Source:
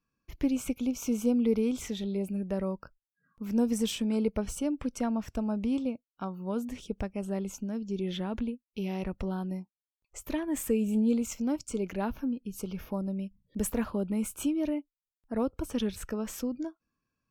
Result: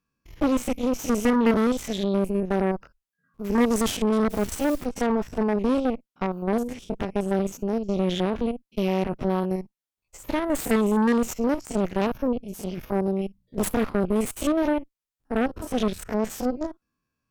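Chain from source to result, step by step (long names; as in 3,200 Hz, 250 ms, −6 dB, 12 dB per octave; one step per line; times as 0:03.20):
spectrum averaged block by block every 50 ms
0:04.29–0:04.84: background noise white −53 dBFS
harmonic generator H 7 −30 dB, 8 −13 dB, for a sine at −17 dBFS
level +6 dB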